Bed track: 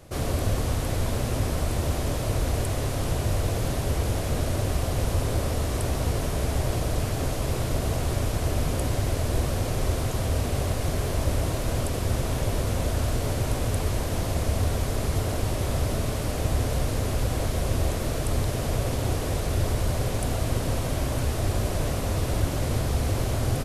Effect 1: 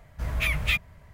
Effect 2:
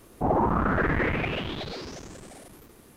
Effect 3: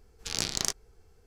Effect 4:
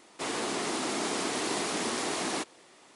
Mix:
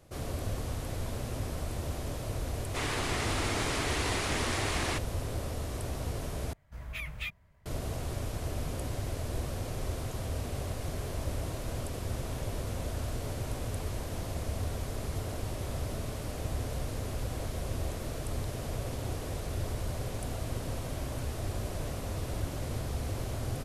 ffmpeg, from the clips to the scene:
ffmpeg -i bed.wav -i cue0.wav -i cue1.wav -i cue2.wav -i cue3.wav -filter_complex "[0:a]volume=-9.5dB[link_01];[4:a]equalizer=frequency=2100:width_type=o:width=1.7:gain=6.5[link_02];[link_01]asplit=2[link_03][link_04];[link_03]atrim=end=6.534[link_05];[1:a]atrim=end=1.13,asetpts=PTS-STARTPTS,volume=-13dB[link_06];[link_04]atrim=start=7.656[link_07];[link_02]atrim=end=2.95,asetpts=PTS-STARTPTS,volume=-4dB,afade=type=in:duration=0.004:curve=hsin,afade=type=out:start_time=2.946:duration=0.004:curve=hsin,adelay=2550[link_08];[link_05][link_06]acrossfade=duration=0.004:curve1=hsin:curve2=hsin[link_09];[link_09][link_07]acrossfade=duration=0.004:curve1=hsin:curve2=hsin[link_10];[link_10][link_08]amix=inputs=2:normalize=0" out.wav

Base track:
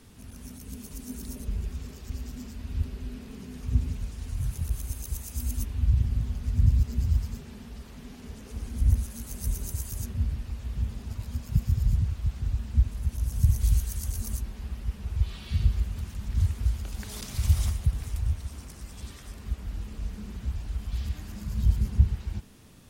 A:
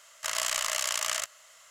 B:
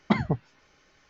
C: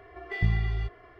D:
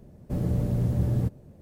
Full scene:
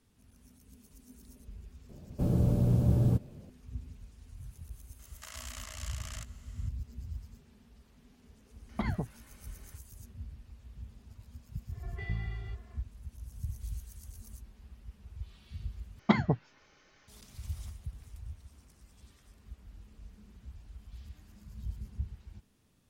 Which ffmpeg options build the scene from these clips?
ffmpeg -i bed.wav -i cue0.wav -i cue1.wav -i cue2.wav -i cue3.wav -filter_complex "[2:a]asplit=2[link_01][link_02];[0:a]volume=-16.5dB[link_03];[4:a]equalizer=frequency=1900:width_type=o:width=0.21:gain=-14[link_04];[1:a]alimiter=limit=-24dB:level=0:latency=1:release=60[link_05];[link_01]acompressor=threshold=-28dB:ratio=6:attack=3.2:release=140:knee=1:detection=peak[link_06];[link_03]asplit=2[link_07][link_08];[link_07]atrim=end=15.994[link_09];[link_02]atrim=end=1.09,asetpts=PTS-STARTPTS,volume=-1.5dB[link_10];[link_08]atrim=start=17.076[link_11];[link_04]atrim=end=1.61,asetpts=PTS-STARTPTS,volume=-0.5dB,afade=type=in:duration=0.004:curve=hsin,afade=type=out:start_time=1.606:duration=0.004:curve=hsin,adelay=1890[link_12];[link_05]atrim=end=1.7,asetpts=PTS-STARTPTS,volume=-9dB,afade=type=in:duration=0.004:curve=hsin,afade=type=out:start_time=1.696:duration=0.004:curve=hsin,adelay=4990[link_13];[link_06]atrim=end=1.09,asetpts=PTS-STARTPTS,volume=-0.5dB,afade=type=in:duration=0.004:curve=hsin,afade=type=out:start_time=1.086:duration=0.004:curve=hsin,adelay=8690[link_14];[3:a]atrim=end=1.19,asetpts=PTS-STARTPTS,volume=-10.5dB,afade=type=in:duration=0.1,afade=type=out:start_time=1.09:duration=0.1,adelay=11670[link_15];[link_09][link_10]acrossfade=duration=0.004:curve1=hsin:curve2=hsin[link_16];[link_16][link_11]acrossfade=duration=0.004:curve1=hsin:curve2=hsin[link_17];[link_17][link_12][link_13][link_14][link_15]amix=inputs=5:normalize=0" out.wav

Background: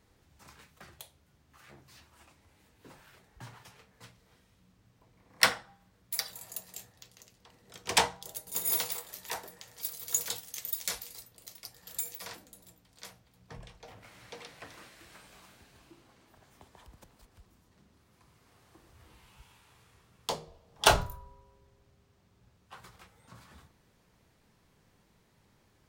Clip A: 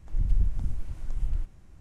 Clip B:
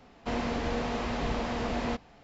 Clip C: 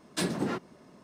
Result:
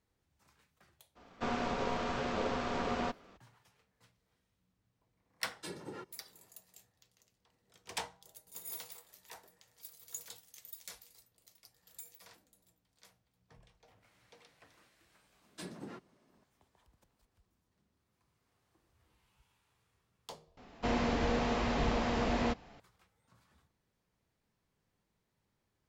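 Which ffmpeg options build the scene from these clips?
ffmpeg -i bed.wav -i cue0.wav -i cue1.wav -i cue2.wav -filter_complex "[2:a]asplit=2[link_01][link_02];[3:a]asplit=2[link_03][link_04];[0:a]volume=-14.5dB[link_05];[link_01]aeval=exprs='val(0)*sin(2*PI*480*n/s)':channel_layout=same[link_06];[link_03]aecho=1:1:2.2:0.59[link_07];[link_05]asplit=2[link_08][link_09];[link_08]atrim=end=20.574[link_10];[link_02]atrim=end=2.23,asetpts=PTS-STARTPTS,volume=-0.5dB[link_11];[link_09]atrim=start=22.796[link_12];[link_06]atrim=end=2.23,asetpts=PTS-STARTPTS,volume=-1dB,afade=type=in:duration=0.02,afade=type=out:start_time=2.21:duration=0.02,adelay=1150[link_13];[link_07]atrim=end=1.03,asetpts=PTS-STARTPTS,volume=-15dB,afade=type=in:duration=0.004:curve=hsin,afade=type=out:start_time=1.026:duration=0.004:curve=hsin,adelay=5460[link_14];[link_04]atrim=end=1.03,asetpts=PTS-STARTPTS,volume=-16dB,afade=type=in:duration=0.004:curve=hsin,afade=type=out:start_time=1.026:duration=0.004:curve=hsin,adelay=15410[link_15];[link_10][link_11]acrossfade=duration=0.004:curve1=hsin:curve2=hsin[link_16];[link_16][link_12]acrossfade=duration=0.004:curve1=hsin:curve2=hsin[link_17];[link_17][link_13][link_14][link_15]amix=inputs=4:normalize=0" out.wav

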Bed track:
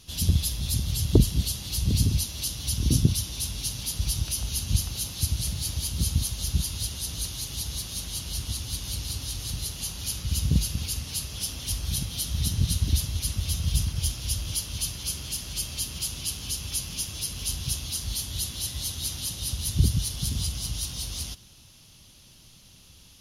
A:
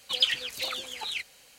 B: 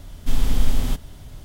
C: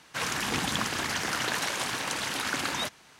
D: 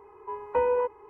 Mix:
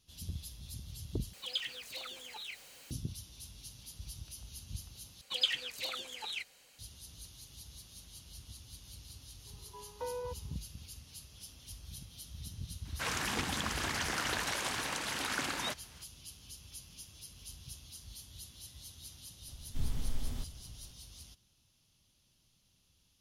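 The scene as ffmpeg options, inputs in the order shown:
ffmpeg -i bed.wav -i cue0.wav -i cue1.wav -i cue2.wav -i cue3.wav -filter_complex "[1:a]asplit=2[link_01][link_02];[0:a]volume=-19dB[link_03];[link_01]aeval=exprs='val(0)+0.5*0.0126*sgn(val(0))':channel_layout=same[link_04];[3:a]alimiter=limit=-16.5dB:level=0:latency=1:release=219[link_05];[link_03]asplit=3[link_06][link_07][link_08];[link_06]atrim=end=1.334[link_09];[link_04]atrim=end=1.58,asetpts=PTS-STARTPTS,volume=-13dB[link_10];[link_07]atrim=start=2.906:end=5.214[link_11];[link_02]atrim=end=1.58,asetpts=PTS-STARTPTS,volume=-6.5dB[link_12];[link_08]atrim=start=6.786[link_13];[4:a]atrim=end=1.09,asetpts=PTS-STARTPTS,volume=-15.5dB,afade=type=in:duration=0.004:curve=hsin,afade=type=out:start_time=1.086:duration=0.004:curve=hsin,adelay=417186S[link_14];[link_05]atrim=end=3.19,asetpts=PTS-STARTPTS,volume=-5dB,afade=type=in:duration=0.004:curve=hsin,afade=type=out:start_time=3.186:duration=0.004:curve=hsin,adelay=12850[link_15];[2:a]atrim=end=1.44,asetpts=PTS-STARTPTS,volume=-17.5dB,afade=type=in:duration=0.004:curve=hsin,afade=type=out:start_time=1.436:duration=0.004:curve=hsin,adelay=19480[link_16];[link_09][link_10]acrossfade=duration=0.004:curve1=hsin:curve2=hsin[link_17];[link_17][link_11]acrossfade=duration=0.004:curve1=hsin:curve2=hsin[link_18];[link_18][link_12]acrossfade=duration=0.004:curve1=hsin:curve2=hsin[link_19];[link_19][link_13]acrossfade=duration=0.004:curve1=hsin:curve2=hsin[link_20];[link_20][link_14][link_15][link_16]amix=inputs=4:normalize=0" out.wav

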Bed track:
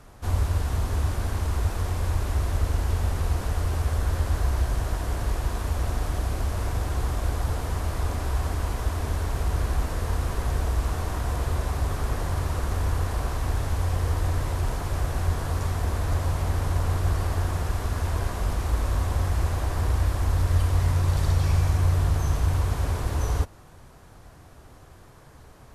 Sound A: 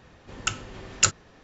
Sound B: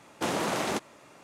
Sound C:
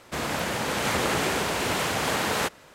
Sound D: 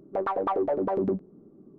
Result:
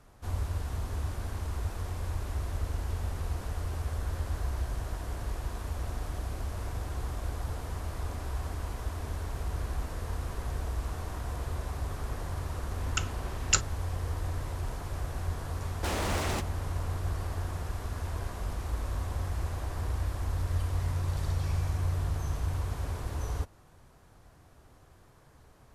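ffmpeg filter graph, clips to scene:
ffmpeg -i bed.wav -i cue0.wav -i cue1.wav -filter_complex "[0:a]volume=-8.5dB[link_01];[2:a]aeval=exprs='0.0447*(abs(mod(val(0)/0.0447+3,4)-2)-1)':channel_layout=same[link_02];[1:a]atrim=end=1.43,asetpts=PTS-STARTPTS,volume=-5dB,afade=type=in:duration=0.004:curve=hsin,afade=type=out:start_time=1.426:duration=0.004:curve=hsin,adelay=12500[link_03];[link_02]atrim=end=1.23,asetpts=PTS-STARTPTS,volume=-1dB,afade=type=in:duration=0.004:curve=hsin,afade=type=out:start_time=1.226:duration=0.004:curve=hsin,adelay=15620[link_04];[link_01][link_03][link_04]amix=inputs=3:normalize=0" out.wav

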